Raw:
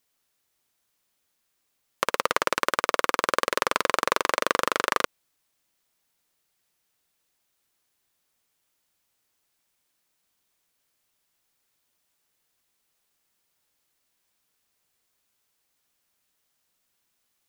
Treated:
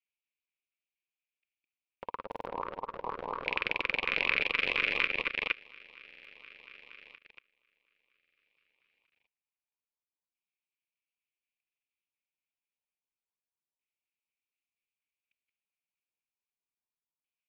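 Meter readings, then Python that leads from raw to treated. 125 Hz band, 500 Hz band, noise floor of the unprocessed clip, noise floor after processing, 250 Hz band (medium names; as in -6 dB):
-5.0 dB, -12.0 dB, -75 dBFS, under -85 dBFS, -9.5 dB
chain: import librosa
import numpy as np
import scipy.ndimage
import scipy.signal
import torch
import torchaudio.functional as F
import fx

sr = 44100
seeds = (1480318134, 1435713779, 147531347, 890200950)

y = fx.tracing_dist(x, sr, depth_ms=0.12)
y = fx.echo_feedback(y, sr, ms=158, feedback_pct=24, wet_db=-23.0)
y = fx.transient(y, sr, attack_db=-4, sustain_db=8)
y = fx.graphic_eq_31(y, sr, hz=(100, 630, 6300, 10000), db=(-6, -4, -9, 4))
y = fx.filter_lfo_lowpass(y, sr, shape='square', hz=0.29, low_hz=960.0, high_hz=2400.0, q=5.2)
y = fx.echo_opening(y, sr, ms=234, hz=750, octaves=2, feedback_pct=70, wet_db=0)
y = fx.level_steps(y, sr, step_db=24)
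y = fx.filter_lfo_notch(y, sr, shape='saw_up', hz=4.2, low_hz=650.0, high_hz=1700.0, q=0.77)
y = fx.band_shelf(y, sr, hz=3800.0, db=10.0, octaves=1.7)
y = fx.buffer_glitch(y, sr, at_s=(2.27, 6.06, 8.18, 11.64), block=2048, repeats=3)
y = y * 10.0 ** (-7.5 / 20.0)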